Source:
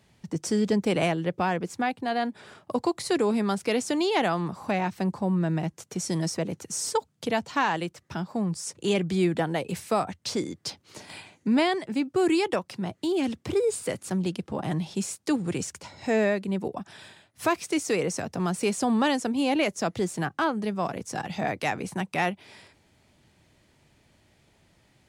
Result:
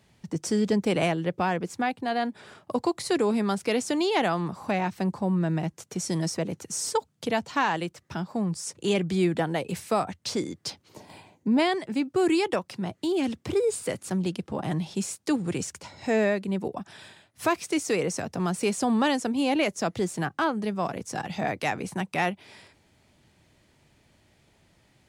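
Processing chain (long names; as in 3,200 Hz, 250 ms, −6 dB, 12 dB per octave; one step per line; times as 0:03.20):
gain on a spectral selection 0:10.88–0:11.59, 1,100–12,000 Hz −9 dB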